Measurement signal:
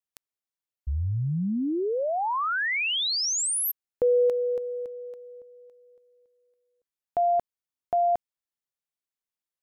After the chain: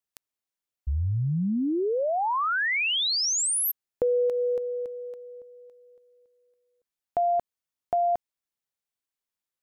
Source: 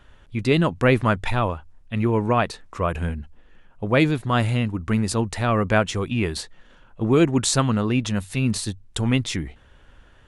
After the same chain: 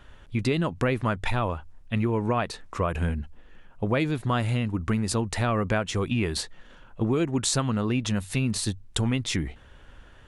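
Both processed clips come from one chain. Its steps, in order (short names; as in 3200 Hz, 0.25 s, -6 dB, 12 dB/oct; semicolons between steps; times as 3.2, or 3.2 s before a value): compressor 6:1, threshold -23 dBFS; gain +1.5 dB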